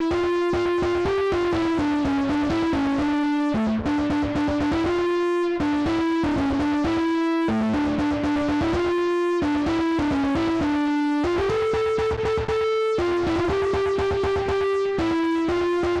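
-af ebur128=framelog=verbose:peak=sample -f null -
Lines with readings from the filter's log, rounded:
Integrated loudness:
  I:         -22.6 LUFS
  Threshold: -32.6 LUFS
Loudness range:
  LRA:         0.3 LU
  Threshold: -42.6 LUFS
  LRA low:   -22.8 LUFS
  LRA high:  -22.5 LUFS
Sample peak:
  Peak:      -19.2 dBFS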